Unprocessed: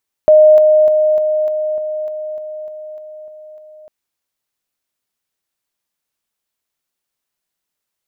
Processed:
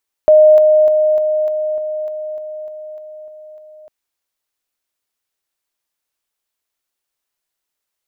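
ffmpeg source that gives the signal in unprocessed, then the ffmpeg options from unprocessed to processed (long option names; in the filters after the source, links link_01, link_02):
-f lavfi -i "aevalsrc='pow(10,(-3.5-3*floor(t/0.3))/20)*sin(2*PI*616*t)':duration=3.6:sample_rate=44100"
-af "equalizer=frequency=160:width=1.2:gain=-8.5"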